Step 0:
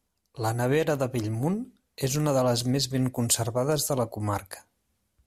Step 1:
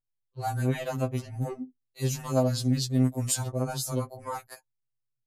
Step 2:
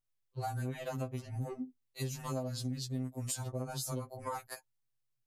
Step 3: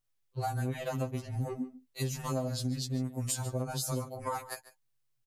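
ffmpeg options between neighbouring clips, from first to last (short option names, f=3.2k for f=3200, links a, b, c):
-af "anlmdn=0.0631,afftfilt=real='re*2.45*eq(mod(b,6),0)':imag='im*2.45*eq(mod(b,6),0)':win_size=2048:overlap=0.75,volume=-2.5dB"
-af "acompressor=threshold=-36dB:ratio=6,volume=1dB"
-af "aecho=1:1:145:0.158,volume=4dB"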